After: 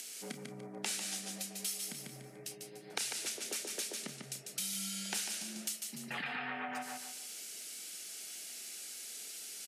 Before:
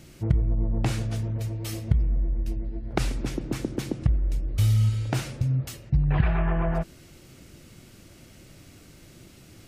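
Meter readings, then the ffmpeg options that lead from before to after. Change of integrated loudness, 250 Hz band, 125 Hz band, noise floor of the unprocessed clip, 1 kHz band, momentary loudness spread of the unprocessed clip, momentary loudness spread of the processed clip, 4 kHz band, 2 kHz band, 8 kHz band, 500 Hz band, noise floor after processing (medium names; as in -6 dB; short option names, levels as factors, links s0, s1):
-12.5 dB, -16.0 dB, -31.5 dB, -51 dBFS, -8.0 dB, 8 LU, 9 LU, +2.0 dB, -3.0 dB, +7.0 dB, -13.5 dB, -52 dBFS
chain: -filter_complex "[0:a]aderivative,bandreject=f=960:w=5.6,aecho=1:1:146|292|438|584:0.501|0.15|0.0451|0.0135,acompressor=threshold=0.00316:ratio=2.5,lowpass=f=12000:w=0.5412,lowpass=f=12000:w=1.3066,acompressor=mode=upward:threshold=0.00141:ratio=2.5,afreqshift=86,highpass=140,asplit=2[s0][s1];[s1]adelay=31,volume=0.224[s2];[s0][s2]amix=inputs=2:normalize=0,volume=3.98"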